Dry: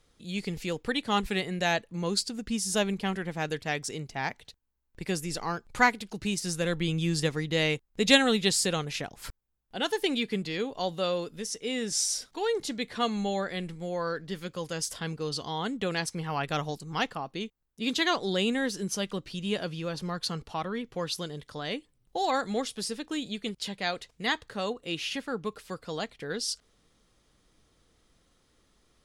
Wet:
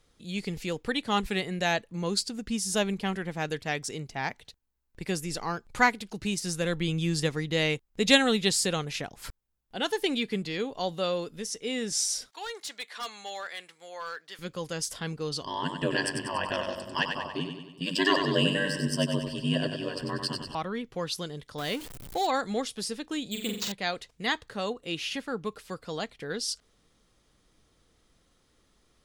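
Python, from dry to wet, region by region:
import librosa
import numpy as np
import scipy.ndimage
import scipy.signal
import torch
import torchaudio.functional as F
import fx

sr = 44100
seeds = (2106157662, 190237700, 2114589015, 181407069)

y = fx.chain(x, sr, fx.highpass(hz=940.0, slope=12),
    fx.clip_hard(threshold_db=-31.0), at=(12.3, 14.39))
y = fx.chain(y, sr, fx.ripple_eq(per_octave=1.3, db=17),
    fx.ring_mod(carrier_hz=48.0),
    fx.echo_feedback(ms=95, feedback_pct=54, wet_db=-6.0), at=(15.43, 20.55))
y = fx.chain(y, sr, fx.zero_step(step_db=-38.0),
    fx.high_shelf(hz=7500.0, db=6.0), at=(21.58, 22.27))
y = fx.chain(y, sr, fx.high_shelf(hz=5000.0, db=5.5),
    fx.room_flutter(wall_m=7.5, rt60_s=0.56),
    fx.resample_bad(factor=4, down='none', up='hold'), at=(23.31, 23.72))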